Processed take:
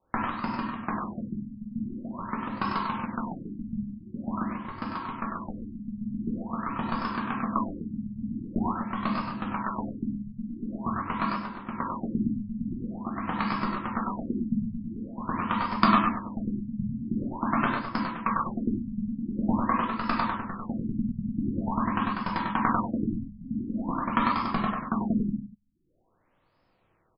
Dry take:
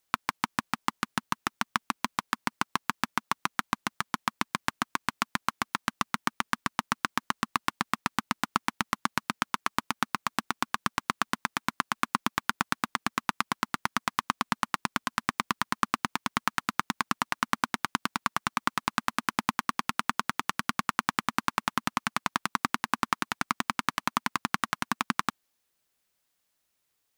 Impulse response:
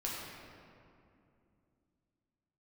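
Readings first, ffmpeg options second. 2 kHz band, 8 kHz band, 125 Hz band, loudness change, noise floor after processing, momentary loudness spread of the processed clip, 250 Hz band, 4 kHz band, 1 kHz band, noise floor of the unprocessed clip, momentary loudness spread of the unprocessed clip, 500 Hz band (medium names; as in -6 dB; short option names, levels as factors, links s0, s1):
-6.0 dB, under -40 dB, +8.0 dB, +0.5 dB, -69 dBFS, 10 LU, +8.5 dB, -10.0 dB, -0.5 dB, -78 dBFS, 3 LU, +5.0 dB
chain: -filter_complex "[0:a]aeval=exprs='val(0)+0.5*0.106*sgn(val(0))':c=same,agate=range=0.01:threshold=0.0891:ratio=16:detection=peak,highshelf=f=3000:g=10,adynamicsmooth=sensitivity=1:basefreq=1000,aexciter=amount=4.5:drive=9.7:freq=5800,aecho=1:1:98:0.447[s0];[1:a]atrim=start_sample=2205,atrim=end_sample=6615[s1];[s0][s1]afir=irnorm=-1:irlink=0,afftfilt=real='re*lt(b*sr/1024,250*pow(5300/250,0.5+0.5*sin(2*PI*0.46*pts/sr)))':imag='im*lt(b*sr/1024,250*pow(5300/250,0.5+0.5*sin(2*PI*0.46*pts/sr)))':win_size=1024:overlap=0.75,volume=2.51"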